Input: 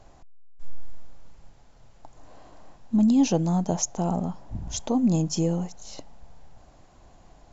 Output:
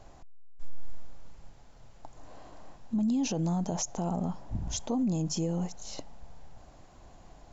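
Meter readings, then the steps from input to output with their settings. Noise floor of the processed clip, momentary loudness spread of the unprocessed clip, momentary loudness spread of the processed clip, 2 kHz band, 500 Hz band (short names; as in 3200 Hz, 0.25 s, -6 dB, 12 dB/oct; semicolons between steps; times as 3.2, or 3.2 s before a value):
-55 dBFS, 16 LU, 9 LU, -4.0 dB, -7.0 dB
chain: limiter -23 dBFS, peak gain reduction 11.5 dB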